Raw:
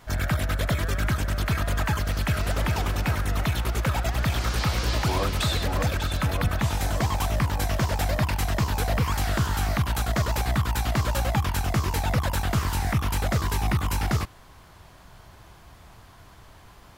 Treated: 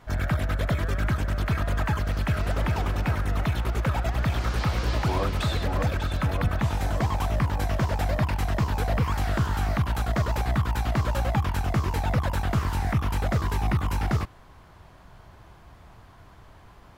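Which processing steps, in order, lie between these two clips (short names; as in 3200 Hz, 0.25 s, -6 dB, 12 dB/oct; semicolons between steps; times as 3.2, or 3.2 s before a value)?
high shelf 3200 Hz -10 dB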